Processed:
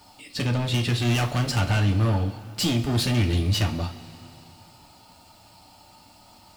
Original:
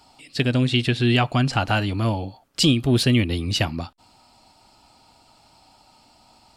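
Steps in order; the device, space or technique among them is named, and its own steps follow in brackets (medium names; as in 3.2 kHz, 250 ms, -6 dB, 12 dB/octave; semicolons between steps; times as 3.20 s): open-reel tape (saturation -23.5 dBFS, distortion -7 dB; peaking EQ 130 Hz +4 dB 1.14 oct; white noise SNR 37 dB); 0.91–1.60 s: treble shelf 6.7 kHz +7 dB; two-slope reverb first 0.28 s, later 2.9 s, from -18 dB, DRR 2.5 dB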